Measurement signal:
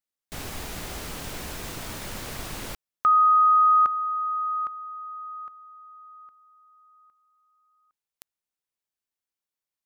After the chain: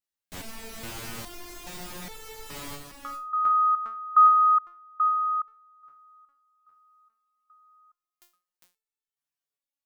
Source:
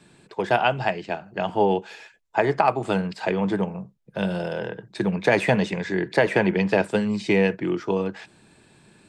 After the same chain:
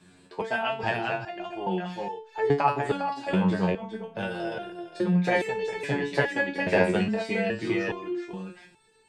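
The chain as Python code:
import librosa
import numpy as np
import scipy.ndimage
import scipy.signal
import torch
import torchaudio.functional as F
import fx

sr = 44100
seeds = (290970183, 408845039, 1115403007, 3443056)

y = x + 10.0 ** (-5.5 / 20.0) * np.pad(x, (int(404 * sr / 1000.0), 0))[:len(x)]
y = fx.resonator_held(y, sr, hz=2.4, low_hz=91.0, high_hz=440.0)
y = y * 10.0 ** (7.5 / 20.0)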